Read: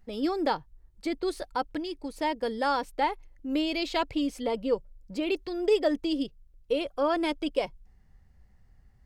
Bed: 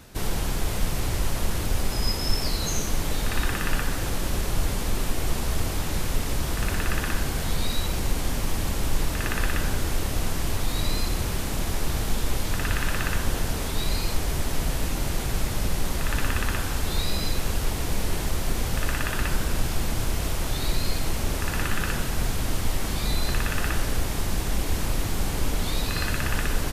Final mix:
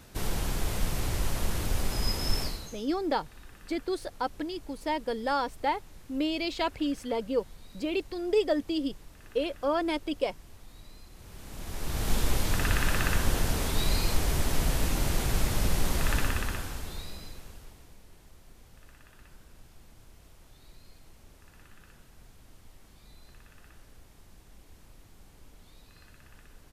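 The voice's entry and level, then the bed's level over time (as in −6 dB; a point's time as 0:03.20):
2.65 s, −1.5 dB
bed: 0:02.41 −4 dB
0:02.85 −25.5 dB
0:11.10 −25.5 dB
0:12.13 −1 dB
0:16.11 −1 dB
0:18.01 −28.5 dB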